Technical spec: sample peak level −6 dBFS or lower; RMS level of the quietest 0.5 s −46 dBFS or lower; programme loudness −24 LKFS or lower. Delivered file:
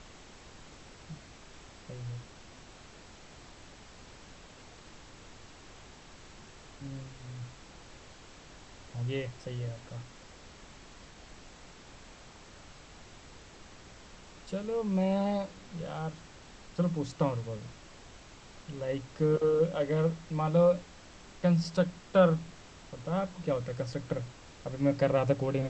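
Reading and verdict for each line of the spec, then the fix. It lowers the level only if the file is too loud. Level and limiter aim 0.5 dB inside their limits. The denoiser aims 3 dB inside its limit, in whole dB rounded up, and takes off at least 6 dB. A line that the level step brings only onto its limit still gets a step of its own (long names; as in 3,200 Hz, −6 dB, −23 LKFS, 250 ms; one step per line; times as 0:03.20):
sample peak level −12.0 dBFS: in spec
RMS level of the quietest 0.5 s −52 dBFS: in spec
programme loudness −31.5 LKFS: in spec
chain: no processing needed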